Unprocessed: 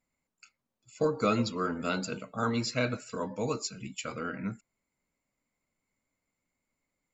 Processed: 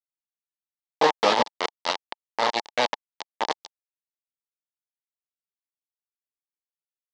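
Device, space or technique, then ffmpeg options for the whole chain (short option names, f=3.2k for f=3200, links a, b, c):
hand-held game console: -af "acrusher=bits=3:mix=0:aa=0.000001,highpass=440,equalizer=f=870:t=q:w=4:g=9,equalizer=f=1.4k:t=q:w=4:g=-10,equalizer=f=2.5k:t=q:w=4:g=-7,lowpass=f=4.9k:w=0.5412,lowpass=f=4.9k:w=1.3066,volume=8dB"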